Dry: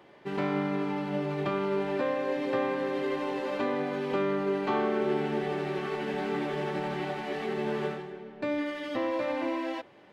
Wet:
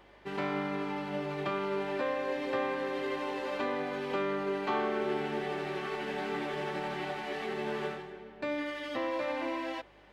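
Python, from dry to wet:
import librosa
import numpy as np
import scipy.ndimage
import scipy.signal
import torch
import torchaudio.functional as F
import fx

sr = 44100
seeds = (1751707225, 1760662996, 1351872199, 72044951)

y = fx.low_shelf(x, sr, hz=480.0, db=-7.5)
y = fx.add_hum(y, sr, base_hz=50, snr_db=32)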